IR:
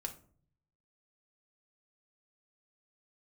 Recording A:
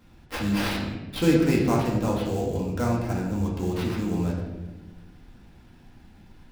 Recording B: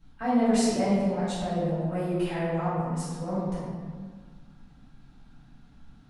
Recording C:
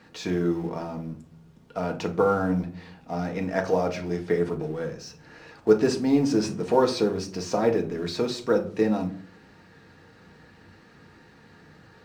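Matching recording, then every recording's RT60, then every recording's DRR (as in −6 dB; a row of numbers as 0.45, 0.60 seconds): C; 1.2, 1.7, 0.50 seconds; −4.0, −12.5, 3.0 decibels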